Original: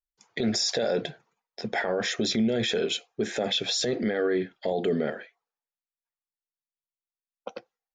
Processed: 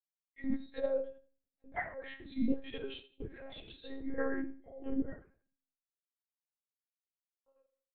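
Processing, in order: expander on every frequency bin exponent 2; low-pass 2.7 kHz 12 dB/octave; level held to a coarse grid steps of 15 dB; peak limiter -27.5 dBFS, peak gain reduction 7 dB; feedback delay 83 ms, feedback 33%, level -13 dB; simulated room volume 31 m³, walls mixed, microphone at 1.6 m; monotone LPC vocoder at 8 kHz 270 Hz; upward expansion 1.5:1, over -47 dBFS; trim -5.5 dB

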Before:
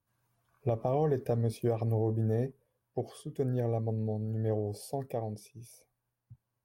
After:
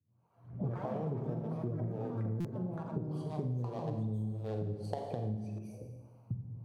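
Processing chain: local Wiener filter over 25 samples; recorder AGC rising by 50 dB/s; harmonic tremolo 1.7 Hz, depth 100%, crossover 450 Hz; ever faster or slower copies 155 ms, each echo +6 st, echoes 3, each echo -6 dB; high-pass 78 Hz 24 dB/octave; bass shelf 380 Hz +10 dB; Schroeder reverb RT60 1.3 s, combs from 33 ms, DRR 3.5 dB; compression, threshold -29 dBFS, peak gain reduction 10.5 dB; 3.11–5.59 s: graphic EQ 1/4/8 kHz +5/+11/+8 dB; buffer glitch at 2.40 s, samples 256, times 7; trim -4 dB

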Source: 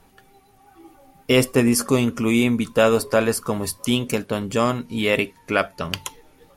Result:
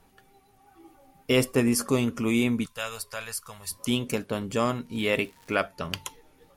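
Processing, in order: 2.66–3.71 s: amplifier tone stack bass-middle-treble 10-0-10; 4.85–5.54 s: crackle 68 per s -> 340 per s -35 dBFS; trim -5.5 dB

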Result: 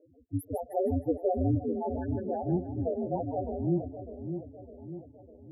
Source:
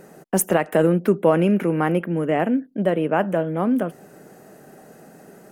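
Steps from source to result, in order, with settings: loudest bins only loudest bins 1; ring modulator 89 Hz; two-band feedback delay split 610 Hz, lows 605 ms, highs 156 ms, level -8 dB

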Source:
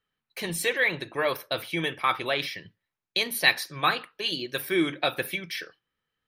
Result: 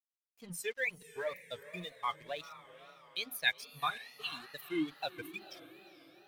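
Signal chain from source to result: expander on every frequency bin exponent 2; crossover distortion -49 dBFS; on a send: echo that smears into a reverb 473 ms, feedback 51%, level -14.5 dB; on the sum: wow and flutter 140 cents; trim -7.5 dB

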